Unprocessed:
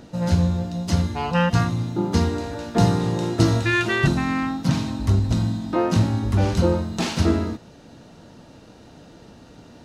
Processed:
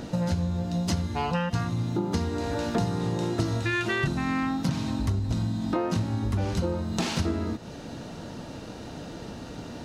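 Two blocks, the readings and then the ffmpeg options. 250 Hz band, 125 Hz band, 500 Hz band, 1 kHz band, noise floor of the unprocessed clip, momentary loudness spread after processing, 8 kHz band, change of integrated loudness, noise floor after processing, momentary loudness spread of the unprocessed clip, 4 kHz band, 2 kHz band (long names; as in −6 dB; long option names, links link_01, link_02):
−5.5 dB, −7.0 dB, −6.0 dB, −5.5 dB, −47 dBFS, 13 LU, −4.5 dB, −6.5 dB, −40 dBFS, 5 LU, −5.0 dB, −6.0 dB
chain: -af "acompressor=threshold=-32dB:ratio=6,volume=7dB"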